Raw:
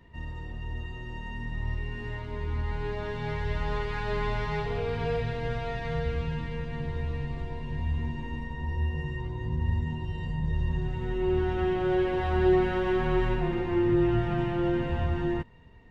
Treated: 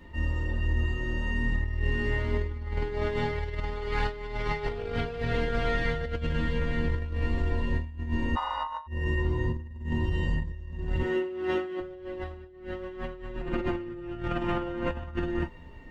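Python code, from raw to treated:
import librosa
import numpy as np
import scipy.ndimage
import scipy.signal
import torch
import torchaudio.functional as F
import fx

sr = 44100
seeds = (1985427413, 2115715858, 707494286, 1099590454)

y = fx.highpass(x, sr, hz=290.0, slope=12, at=(11.02, 11.8))
y = fx.peak_eq(y, sr, hz=1000.0, db=7.5, octaves=0.72, at=(14.38, 15.13))
y = fx.rev_gated(y, sr, seeds[0], gate_ms=80, shape='falling', drr_db=-0.5)
y = fx.over_compress(y, sr, threshold_db=-29.0, ratio=-0.5)
y = fx.ring_mod(y, sr, carrier_hz=1000.0, at=(8.35, 8.86), fade=0.02)
y = y + 0.34 * np.pad(y, (int(3.4 * sr / 1000.0), 0))[:len(y)]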